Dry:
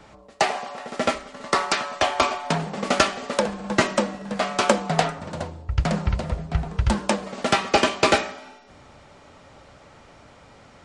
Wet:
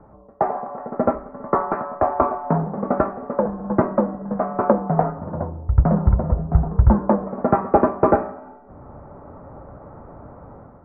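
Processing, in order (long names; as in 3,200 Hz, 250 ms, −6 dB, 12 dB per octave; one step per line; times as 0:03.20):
inverse Chebyshev low-pass filter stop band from 3,100 Hz, stop band 50 dB
low-shelf EQ 430 Hz +4 dB
automatic gain control gain up to 8.5 dB
level −1 dB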